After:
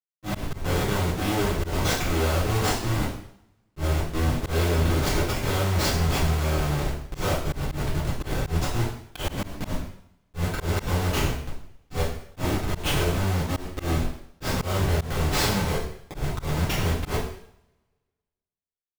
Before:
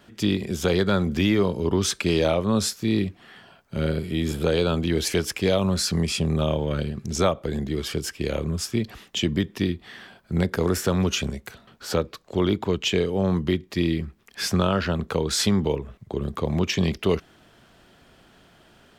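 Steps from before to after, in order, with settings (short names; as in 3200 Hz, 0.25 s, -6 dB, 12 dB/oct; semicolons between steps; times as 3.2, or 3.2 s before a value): Schmitt trigger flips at -22 dBFS; two-slope reverb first 0.62 s, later 1.6 s, from -27 dB, DRR -9 dB; auto swell 0.102 s; gain -6.5 dB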